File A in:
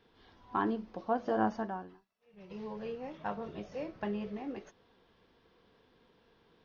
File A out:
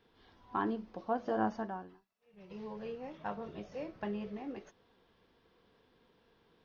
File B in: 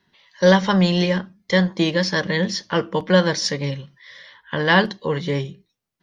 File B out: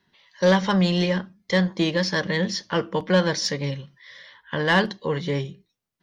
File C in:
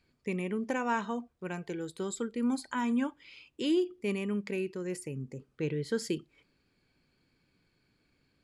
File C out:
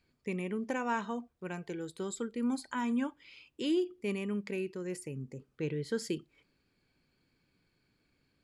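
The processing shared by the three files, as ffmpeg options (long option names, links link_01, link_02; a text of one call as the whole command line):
ffmpeg -i in.wav -af "acontrast=45,volume=-8dB" out.wav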